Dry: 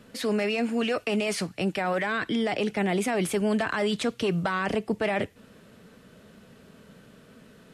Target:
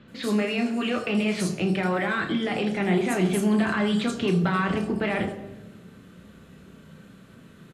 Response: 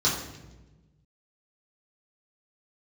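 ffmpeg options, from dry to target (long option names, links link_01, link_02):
-filter_complex "[0:a]asplit=2[link_01][link_02];[link_02]adelay=33,volume=-11dB[link_03];[link_01][link_03]amix=inputs=2:normalize=0,acrossover=split=4700[link_04][link_05];[link_05]adelay=80[link_06];[link_04][link_06]amix=inputs=2:normalize=0,asplit=2[link_07][link_08];[1:a]atrim=start_sample=2205[link_09];[link_08][link_09]afir=irnorm=-1:irlink=0,volume=-16dB[link_10];[link_07][link_10]amix=inputs=2:normalize=0"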